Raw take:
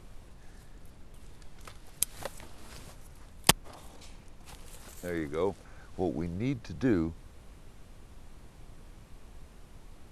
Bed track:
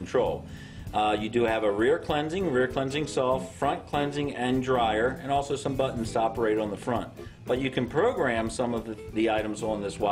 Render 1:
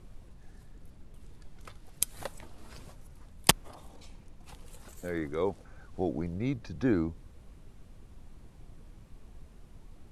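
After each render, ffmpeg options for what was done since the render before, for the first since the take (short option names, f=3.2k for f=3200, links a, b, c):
-af "afftdn=nr=6:nf=-53"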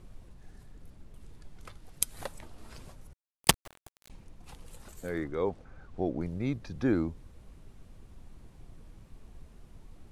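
-filter_complex "[0:a]asettb=1/sr,asplit=3[a][b][c];[a]atrim=end=3.134[d];[b]atrim=start=3.13:end=4.1,asetpts=PTS-STARTPTS,afade=t=in:d=0.004:c=qsin,afade=t=out:st=0.966:d=0.004:c=qsin,aeval=exprs='val(0)*gte(abs(val(0)),0.0106)':c=same[e];[c]atrim=start=4.096[f];[d][e]acrossfade=d=0.004:c1=hsin:c2=qsin[g];[g][f]acrossfade=d=0.004:c1=qsin:c2=hsin,asettb=1/sr,asplit=3[h][i][j];[h]atrim=end=5.244[k];[i]atrim=start=5.24:end=6.21,asetpts=PTS-STARTPTS,afade=t=in:d=0.004:c=qsin,afade=t=out:st=0.966:d=0.004:c=qsin,aemphasis=mode=reproduction:type=50kf[l];[j]atrim=start=6.206[m];[k][l]acrossfade=d=0.004:c1=hsin:c2=qsin[n];[n][m]acrossfade=d=0.004:c1=qsin:c2=hsin"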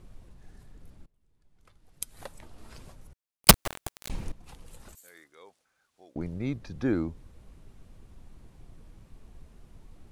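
-filter_complex "[0:a]asettb=1/sr,asplit=3[a][b][c];[a]atrim=end=3.484[d];[b]atrim=start=3.48:end=4.32,asetpts=PTS-STARTPTS,afade=t=in:d=0.004:c=qsin,afade=t=out:st=0.836:d=0.004:c=qsin,aeval=exprs='0.631*sin(PI/2*3.98*val(0)/0.631)':c=same[e];[c]atrim=start=4.316[f];[d][e]acrossfade=d=0.004:c1=hsin:c2=qsin[g];[g][f]acrossfade=d=0.004:c1=qsin:c2=hsin,asettb=1/sr,asplit=3[h][i][j];[h]atrim=end=4.954[k];[i]atrim=start=4.95:end=6.16,asetpts=PTS-STARTPTS,afade=t=in:d=0.004:c=qsin,afade=t=out:st=1.206:d=0.004:c=qsin,aderivative[l];[j]atrim=start=6.156[m];[k][l]acrossfade=d=0.004:c1=hsin:c2=qsin[n];[n][m]acrossfade=d=0.004:c1=qsin:c2=hsin,asplit=2[o][p];[o]atrim=end=1.06,asetpts=PTS-STARTPTS,afade=t=out:st=1.056:d=0.004:c=hsin:silence=0.0630957[q];[p]atrim=start=1.06,asetpts=PTS-STARTPTS,afade=t=in:d=1.51:c=qua:silence=0.0630957[r];[q][r]concat=n=2:v=0:a=1"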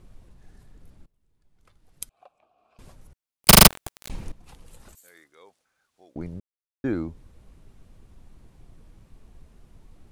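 -filter_complex "[0:a]asettb=1/sr,asplit=3[a][b][c];[a]atrim=end=2.094[d];[b]atrim=start=2.09:end=2.79,asetpts=PTS-STARTPTS,afade=t=in:d=0.004:c=qsin,afade=t=out:st=0.696:d=0.004:c=qsin,asplit=3[e][f][g];[e]bandpass=f=730:t=q:w=8,volume=0dB[h];[f]bandpass=f=1.09k:t=q:w=8,volume=-6dB[i];[g]bandpass=f=2.44k:t=q:w=8,volume=-9dB[j];[h][i][j]amix=inputs=3:normalize=0[k];[c]atrim=start=2.786[l];[d][k]acrossfade=d=0.004:c1=hsin:c2=qsin[m];[m][l]acrossfade=d=0.004:c1=qsin:c2=hsin,asplit=8[n][o][p][q][r][s][t][u];[n]atrim=end=3.522[v];[o]atrim=start=3.478:end=3.522[w];[p]atrim=start=3.478:end=3.522[x];[q]atrim=start=3.478:end=3.522[y];[r]atrim=start=3.478:end=3.522[z];[s]atrim=start=3.678:end=6.4,asetpts=PTS-STARTPTS,afade=t=out:st=2.718:d=0.004:c=hsin[aa];[t]atrim=start=6.4:end=6.84,asetpts=PTS-STARTPTS,volume=0[ab];[u]atrim=start=6.84,asetpts=PTS-STARTPTS,afade=t=in:d=0.004:c=hsin[ac];[v][w]acrossfade=d=0.004:c1=hsin:c2=hsin[ad];[ad][x]acrossfade=d=0.004:c1=hsin:c2=hsin[ae];[ae][y]acrossfade=d=0.004:c1=hsin:c2=hsin[af];[af][z]acrossfade=d=0.004:c1=hsin:c2=hsin[ag];[aa][ab][ac]concat=n=3:v=0:a=1[ah];[ag][ah]acrossfade=d=0.004:c1=hsin:c2=hsin"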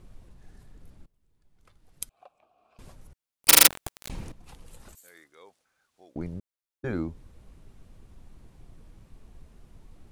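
-af "afftfilt=real='re*lt(hypot(re,im),0.398)':imag='im*lt(hypot(re,im),0.398)':win_size=1024:overlap=0.75"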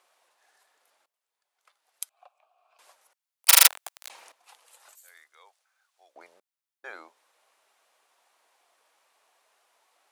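-af "highpass=f=670:w=0.5412,highpass=f=670:w=1.3066"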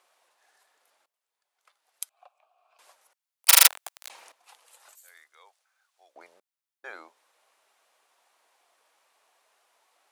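-af anull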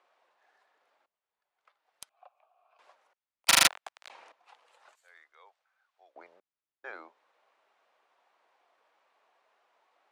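-filter_complex "[0:a]acrossover=split=420|2400[a][b][c];[c]asoftclip=type=hard:threshold=-11dB[d];[a][b][d]amix=inputs=3:normalize=0,adynamicsmooth=sensitivity=1.5:basefreq=3.1k"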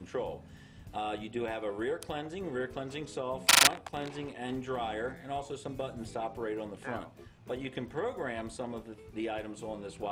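-filter_complex "[1:a]volume=-10.5dB[a];[0:a][a]amix=inputs=2:normalize=0"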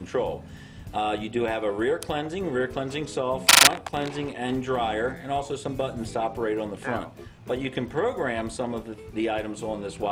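-af "volume=9dB,alimiter=limit=-1dB:level=0:latency=1"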